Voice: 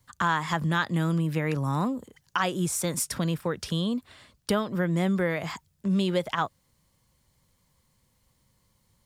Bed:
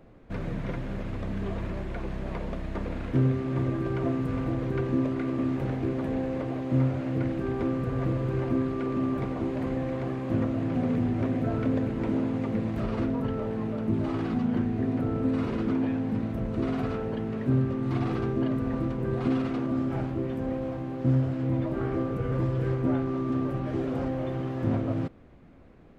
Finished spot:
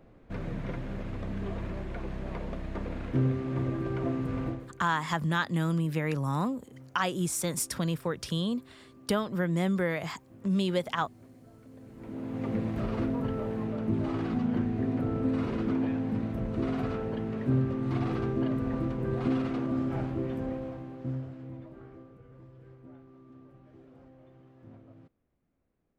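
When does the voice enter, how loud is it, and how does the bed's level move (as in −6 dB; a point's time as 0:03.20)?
4.60 s, −2.5 dB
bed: 0:04.48 −3 dB
0:04.81 −26.5 dB
0:11.68 −26.5 dB
0:12.48 −2 dB
0:20.36 −2 dB
0:22.30 −25 dB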